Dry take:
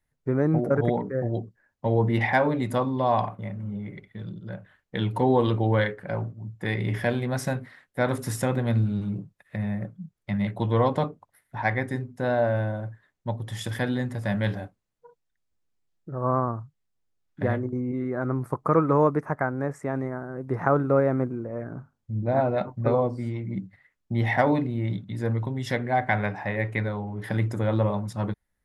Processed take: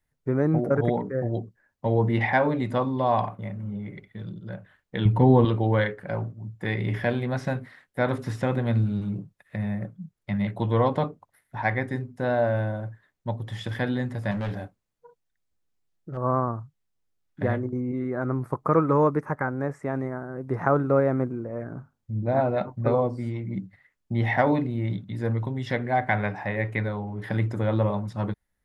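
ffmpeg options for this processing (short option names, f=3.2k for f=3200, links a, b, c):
-filter_complex "[0:a]asettb=1/sr,asplit=3[a][b][c];[a]atrim=end=5.054[d];[b]atrim=start=5.05:end=5.45,asetpts=PTS-STARTPTS,afade=t=in:d=0.004:c=qsin,afade=t=out:st=0.396:d=0.004:c=qsin,bass=f=250:g=10,treble=f=4k:g=-9[e];[c]atrim=start=5.446[f];[d][e]acrossfade=d=0.004:c1=hsin:c2=qsin[g];[g][f]acrossfade=d=0.004:c1=qsin:c2=hsin,asettb=1/sr,asplit=3[h][i][j];[h]atrim=end=14.314[k];[i]atrim=start=14.31:end=16.17,asetpts=PTS-STARTPTS,afade=t=in:d=0.004:c=qsin,afade=t=out:st=1.856:d=0.004:c=qsin,asoftclip=type=hard:threshold=-26dB[l];[j]atrim=start=16.166[m];[k][l]acrossfade=d=0.004:c1=hsin:c2=qsin[n];[n][m]acrossfade=d=0.004:c1=qsin:c2=hsin,asettb=1/sr,asplit=3[o][p][q];[o]atrim=end=18.904[r];[p]atrim=start=18.9:end=19.48,asetpts=PTS-STARTPTS,afade=t=in:d=0.004:c=qsin,afade=t=out:st=0.576:d=0.004:c=qsin,asuperstop=centerf=680:order=4:qfactor=5.8[s];[q]atrim=start=19.476[t];[r][s]acrossfade=d=0.004:c1=hsin:c2=qsin[u];[u][t]acrossfade=d=0.004:c1=qsin:c2=hsin,acrossover=split=4600[v][w];[w]acompressor=threshold=-59dB:ratio=4:attack=1:release=60[x];[v][x]amix=inputs=2:normalize=0"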